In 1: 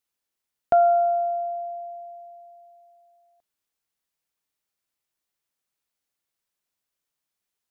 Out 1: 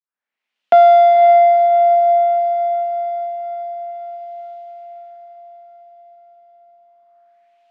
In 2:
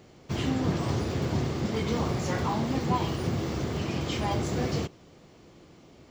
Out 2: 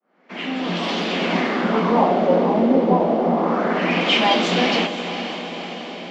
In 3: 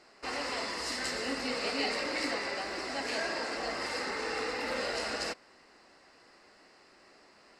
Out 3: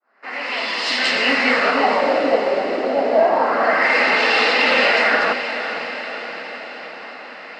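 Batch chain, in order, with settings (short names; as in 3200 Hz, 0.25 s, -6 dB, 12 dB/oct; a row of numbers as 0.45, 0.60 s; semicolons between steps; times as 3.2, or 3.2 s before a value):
opening faded in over 1.43 s; rippled Chebyshev high-pass 170 Hz, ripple 6 dB; high shelf 2100 Hz +12 dB; in parallel at -6.5 dB: soft clip -33.5 dBFS; on the sum: LFO low-pass sine 0.28 Hz 490–3200 Hz; on a send: diffused feedback echo 0.5 s, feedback 64%, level -10 dB; on the sum: normalise peaks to -3 dBFS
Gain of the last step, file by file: +11.5, +10.0, +13.5 dB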